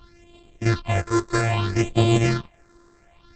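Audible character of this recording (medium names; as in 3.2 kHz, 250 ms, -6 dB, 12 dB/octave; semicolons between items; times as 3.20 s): a buzz of ramps at a fixed pitch in blocks of 128 samples; phasing stages 6, 0.62 Hz, lowest notch 180–1600 Hz; Opus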